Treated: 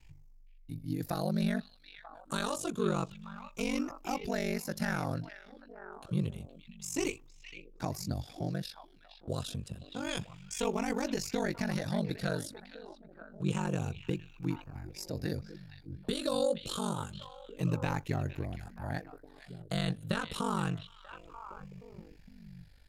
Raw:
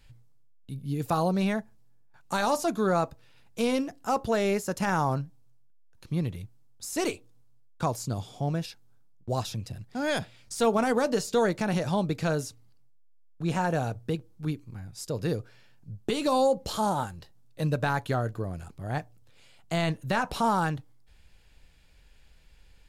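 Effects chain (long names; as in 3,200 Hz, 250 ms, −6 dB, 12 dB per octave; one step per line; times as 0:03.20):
rippled gain that drifts along the octave scale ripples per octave 0.71, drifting −0.28 Hz, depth 8 dB
dynamic equaliser 830 Hz, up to −8 dB, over −39 dBFS, Q 0.88
on a send: echo through a band-pass that steps 468 ms, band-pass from 2,800 Hz, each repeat −1.4 octaves, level −7 dB
on the sum: ring modulation 24 Hz
level −1.5 dB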